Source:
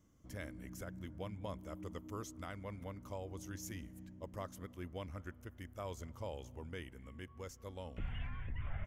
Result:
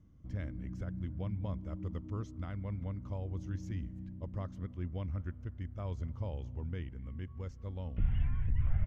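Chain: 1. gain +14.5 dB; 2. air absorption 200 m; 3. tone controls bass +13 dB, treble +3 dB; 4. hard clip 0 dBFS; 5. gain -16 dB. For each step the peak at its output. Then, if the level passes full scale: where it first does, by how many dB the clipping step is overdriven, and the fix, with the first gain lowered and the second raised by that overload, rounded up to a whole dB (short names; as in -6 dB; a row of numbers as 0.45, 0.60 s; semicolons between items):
-14.5, -14.5, -2.5, -2.5, -18.5 dBFS; no overload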